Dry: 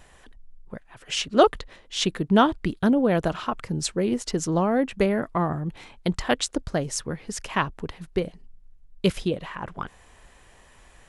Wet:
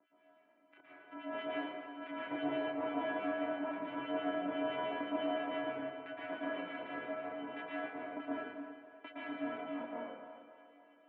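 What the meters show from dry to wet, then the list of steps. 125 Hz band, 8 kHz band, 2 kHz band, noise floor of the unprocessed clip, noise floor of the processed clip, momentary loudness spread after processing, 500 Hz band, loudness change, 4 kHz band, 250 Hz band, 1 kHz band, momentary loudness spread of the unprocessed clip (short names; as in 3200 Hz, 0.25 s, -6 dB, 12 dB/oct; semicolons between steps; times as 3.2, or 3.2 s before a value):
-31.5 dB, under -40 dB, -9.5 dB, -54 dBFS, -67 dBFS, 12 LU, -13.0 dB, -14.5 dB, -18.5 dB, -15.0 dB, -13.5 dB, 16 LU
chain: sample sorter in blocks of 128 samples; compressor, threshold -22 dBFS, peak gain reduction 11 dB; chorus voices 6, 0.22 Hz, delay 28 ms, depth 2.7 ms; resonator 780 Hz, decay 0.37 s, mix 90%; harmonic tremolo 6 Hz, depth 100%, crossover 1500 Hz; on a send: split-band echo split 390 Hz, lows 97 ms, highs 0.282 s, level -13 dB; on the sum: plate-style reverb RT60 1.5 s, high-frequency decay 0.55×, pre-delay 0.105 s, DRR -8 dB; mistuned SSB -55 Hz 350–2500 Hz; gain +10 dB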